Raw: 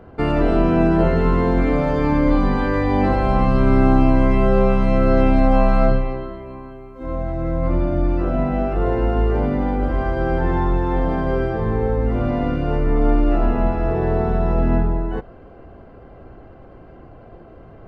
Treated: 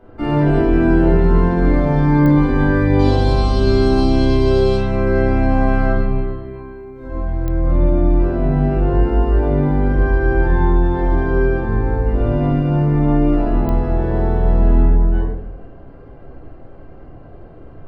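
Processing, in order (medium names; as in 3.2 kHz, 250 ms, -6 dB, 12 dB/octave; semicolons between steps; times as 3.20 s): 2.99–4.77 s: resonant high shelf 2.7 kHz +12 dB, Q 3; simulated room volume 210 m³, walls mixed, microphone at 2.7 m; clicks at 2.26/7.48/13.69 s, -4 dBFS; trim -8.5 dB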